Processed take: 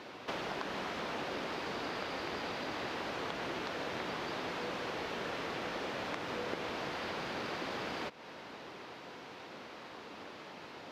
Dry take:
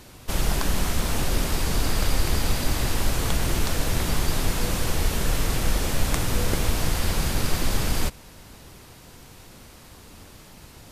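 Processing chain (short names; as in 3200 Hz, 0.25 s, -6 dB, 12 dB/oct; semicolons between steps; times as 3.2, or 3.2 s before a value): HPF 350 Hz 12 dB/oct; compressor 6:1, threshold -38 dBFS, peak gain reduction 14 dB; air absorption 250 m; gain +5 dB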